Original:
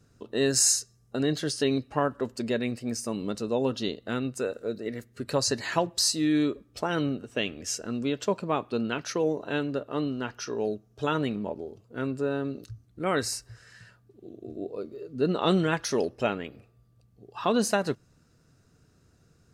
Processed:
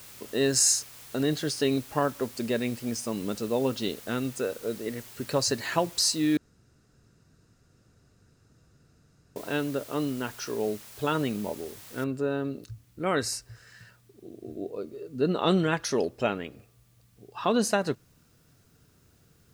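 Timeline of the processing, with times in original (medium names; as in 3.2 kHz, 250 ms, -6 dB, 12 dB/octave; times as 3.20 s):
6.37–9.36 s: room tone
12.04 s: noise floor step -48 dB -69 dB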